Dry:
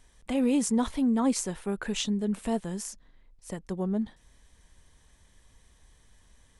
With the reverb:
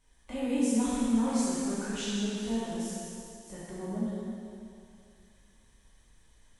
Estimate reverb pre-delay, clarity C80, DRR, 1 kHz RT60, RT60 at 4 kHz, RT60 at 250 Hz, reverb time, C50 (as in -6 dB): 8 ms, -2.5 dB, -10.0 dB, 2.6 s, 2.6 s, 2.3 s, 2.5 s, -4.0 dB